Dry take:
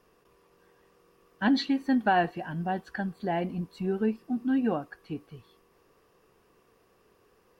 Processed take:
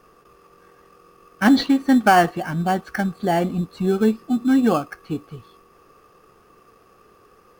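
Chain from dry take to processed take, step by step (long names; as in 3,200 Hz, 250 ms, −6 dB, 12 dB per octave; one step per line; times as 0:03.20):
parametric band 1,200 Hz +12 dB 0.35 octaves
notch filter 1,000 Hz, Q 6.9
in parallel at −8 dB: sample-rate reduction 3,800 Hz, jitter 0%
on the sum: level +6.5 dB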